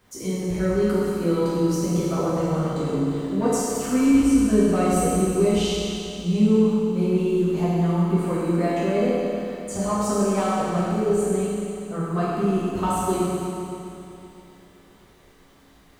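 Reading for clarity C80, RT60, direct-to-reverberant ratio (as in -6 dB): -2.0 dB, 2.9 s, -9.5 dB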